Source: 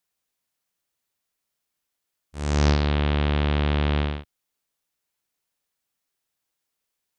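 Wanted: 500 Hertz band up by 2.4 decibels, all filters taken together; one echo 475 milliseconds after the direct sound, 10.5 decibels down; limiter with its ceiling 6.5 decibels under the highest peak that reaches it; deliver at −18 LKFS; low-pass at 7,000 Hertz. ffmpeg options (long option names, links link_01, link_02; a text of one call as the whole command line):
ffmpeg -i in.wav -af "lowpass=7000,equalizer=frequency=500:width_type=o:gain=3,alimiter=limit=-13.5dB:level=0:latency=1,aecho=1:1:475:0.299,volume=7.5dB" out.wav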